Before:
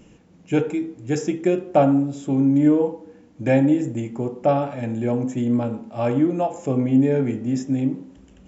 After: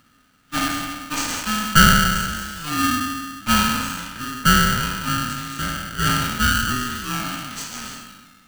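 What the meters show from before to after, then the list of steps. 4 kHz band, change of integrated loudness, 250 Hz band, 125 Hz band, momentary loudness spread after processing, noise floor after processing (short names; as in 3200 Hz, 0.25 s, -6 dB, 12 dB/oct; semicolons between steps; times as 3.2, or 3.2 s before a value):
n/a, +1.0 dB, -6.0 dB, 0.0 dB, 14 LU, -57 dBFS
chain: spectral trails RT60 1.81 s; low-pass opened by the level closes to 680 Hz, open at -13.5 dBFS; tilt +2.5 dB/oct; in parallel at -3 dB: decimation with a swept rate 11×, swing 60% 0.38 Hz; on the sum: added noise brown -46 dBFS; brick-wall FIR high-pass 450 Hz; polarity switched at an audio rate 750 Hz; gain -1 dB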